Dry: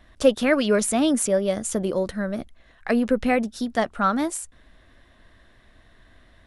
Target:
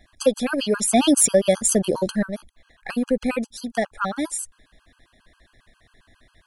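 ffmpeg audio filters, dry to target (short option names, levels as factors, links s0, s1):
-filter_complex "[0:a]highshelf=f=3900:g=8,asettb=1/sr,asplit=3[s0][s1][s2];[s0]atrim=end=0.924[s3];[s1]atrim=start=0.92:end=2.23,asetpts=PTS-STARTPTS,afade=t=in:d=0.004:c=qsin,afade=t=out:st=1.306:d=0.004:c=qsin,acontrast=76[s4];[s2]atrim=start=2.226[s5];[s3][s4]acrossfade=d=0.004:c1=hsin:c2=qsin[s6];[s6][s5]acrossfade=d=0.004:c1=qsin:c2=hsin,afftfilt=real='re*gt(sin(2*PI*7.4*pts/sr)*(1-2*mod(floor(b*sr/1024/830),2)),0)':imag='im*gt(sin(2*PI*7.4*pts/sr)*(1-2*mod(floor(b*sr/1024/830),2)),0)':win_size=1024:overlap=0.75"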